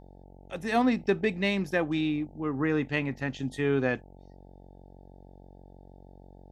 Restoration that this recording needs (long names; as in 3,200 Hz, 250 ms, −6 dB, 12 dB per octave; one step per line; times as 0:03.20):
hum removal 46.3 Hz, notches 19